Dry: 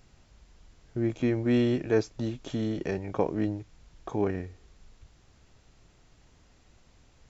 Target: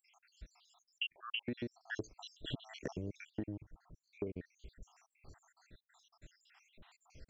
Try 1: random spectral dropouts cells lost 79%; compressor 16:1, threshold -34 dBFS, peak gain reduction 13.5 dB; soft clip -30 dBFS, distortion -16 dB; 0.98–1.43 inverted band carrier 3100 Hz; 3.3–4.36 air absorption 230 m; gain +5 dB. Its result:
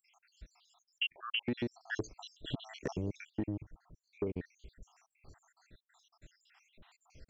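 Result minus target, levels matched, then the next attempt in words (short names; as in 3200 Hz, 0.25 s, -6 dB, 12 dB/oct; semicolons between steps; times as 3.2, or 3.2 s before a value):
compressor: peak gain reduction -6.5 dB
random spectral dropouts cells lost 79%; compressor 16:1, threshold -41 dBFS, peak gain reduction 20.5 dB; soft clip -30 dBFS, distortion -23 dB; 0.98–1.43 inverted band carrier 3100 Hz; 3.3–4.36 air absorption 230 m; gain +5 dB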